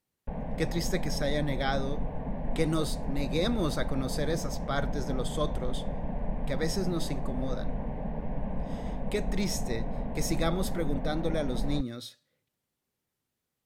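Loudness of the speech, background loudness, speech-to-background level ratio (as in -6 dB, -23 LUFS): -33.5 LUFS, -36.5 LUFS, 3.0 dB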